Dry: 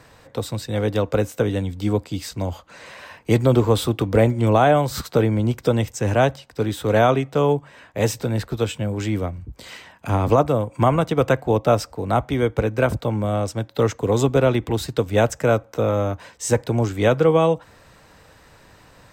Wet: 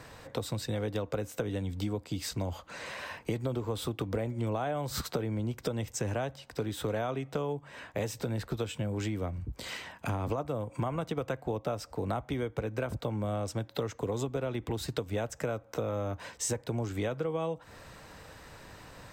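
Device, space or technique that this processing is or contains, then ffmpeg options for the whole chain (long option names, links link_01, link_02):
serial compression, peaks first: -af "acompressor=threshold=-25dB:ratio=6,acompressor=threshold=-37dB:ratio=1.5"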